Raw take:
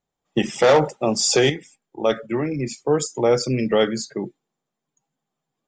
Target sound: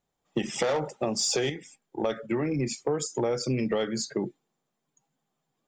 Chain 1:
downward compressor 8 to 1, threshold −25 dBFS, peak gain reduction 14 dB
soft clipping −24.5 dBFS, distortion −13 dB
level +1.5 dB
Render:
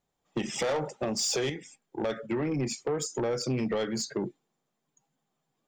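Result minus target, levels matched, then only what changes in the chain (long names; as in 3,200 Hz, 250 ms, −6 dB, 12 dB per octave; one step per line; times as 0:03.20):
soft clipping: distortion +11 dB
change: soft clipping −16 dBFS, distortion −24 dB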